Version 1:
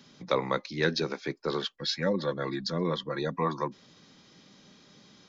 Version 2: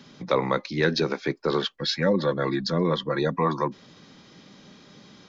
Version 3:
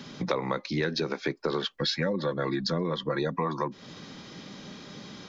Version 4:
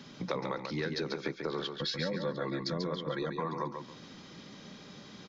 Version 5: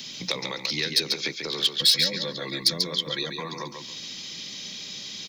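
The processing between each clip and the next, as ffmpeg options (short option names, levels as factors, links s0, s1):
-filter_complex "[0:a]highshelf=f=4500:g=-7.5,asplit=2[s0][s1];[s1]alimiter=limit=0.0841:level=0:latency=1:release=46,volume=1.33[s2];[s0][s2]amix=inputs=2:normalize=0"
-af "acompressor=threshold=0.0251:ratio=6,volume=2"
-af "aecho=1:1:140|280|420:0.501|0.12|0.0289,volume=0.473"
-filter_complex "[0:a]acrossover=split=490|3000[s0][s1][s2];[s2]aeval=exprs='clip(val(0),-1,0.0119)':c=same[s3];[s0][s1][s3]amix=inputs=3:normalize=0,aexciter=amount=8.9:drive=3.1:freq=2100"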